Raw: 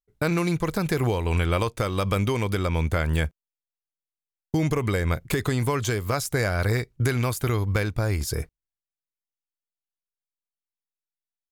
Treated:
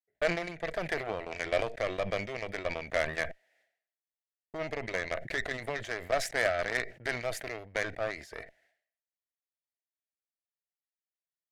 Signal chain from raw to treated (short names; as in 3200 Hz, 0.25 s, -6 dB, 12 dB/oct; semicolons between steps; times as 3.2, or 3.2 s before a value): double band-pass 1100 Hz, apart 1.5 oct; added harmonics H 3 -18 dB, 7 -32 dB, 8 -24 dB, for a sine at -21 dBFS; sustainer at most 100 dB/s; gain +8 dB